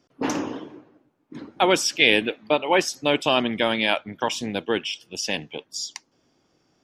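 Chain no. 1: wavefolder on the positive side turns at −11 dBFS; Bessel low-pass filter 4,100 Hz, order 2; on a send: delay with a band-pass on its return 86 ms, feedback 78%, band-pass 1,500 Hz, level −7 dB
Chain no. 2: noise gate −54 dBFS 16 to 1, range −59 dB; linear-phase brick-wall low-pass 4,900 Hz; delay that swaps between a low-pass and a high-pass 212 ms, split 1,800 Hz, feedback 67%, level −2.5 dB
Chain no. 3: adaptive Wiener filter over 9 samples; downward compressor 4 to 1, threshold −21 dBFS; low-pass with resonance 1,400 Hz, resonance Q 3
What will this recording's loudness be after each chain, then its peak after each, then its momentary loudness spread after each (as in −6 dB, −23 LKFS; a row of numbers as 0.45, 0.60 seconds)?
−24.0, −21.5, −27.0 LKFS; −5.5, −1.0, −7.0 dBFS; 16, 20, 16 LU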